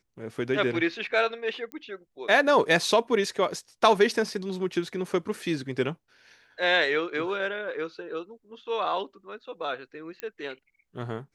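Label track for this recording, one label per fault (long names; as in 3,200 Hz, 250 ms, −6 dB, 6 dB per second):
1.720000	1.720000	click −23 dBFS
10.200000	10.200000	click −19 dBFS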